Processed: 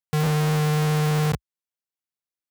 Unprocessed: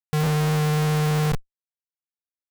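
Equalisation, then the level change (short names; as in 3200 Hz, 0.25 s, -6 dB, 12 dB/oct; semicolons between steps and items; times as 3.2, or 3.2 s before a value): HPF 60 Hz 24 dB/oct; 0.0 dB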